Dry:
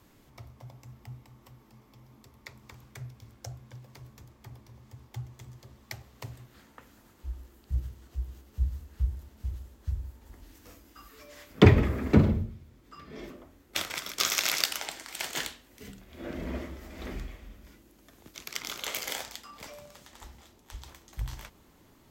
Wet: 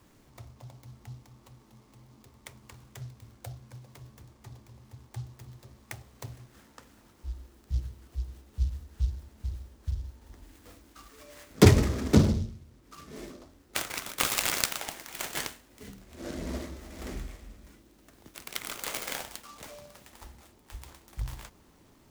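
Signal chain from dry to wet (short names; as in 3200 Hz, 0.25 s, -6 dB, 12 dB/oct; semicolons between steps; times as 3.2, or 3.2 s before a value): noise-modulated delay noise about 4400 Hz, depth 0.062 ms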